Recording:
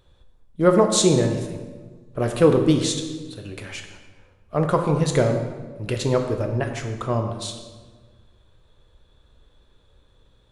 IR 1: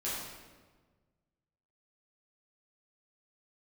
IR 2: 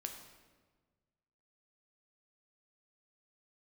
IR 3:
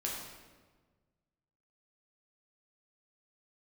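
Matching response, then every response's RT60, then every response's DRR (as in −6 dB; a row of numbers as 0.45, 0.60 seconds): 2; 1.4, 1.5, 1.4 seconds; −9.5, 4.0, −3.5 decibels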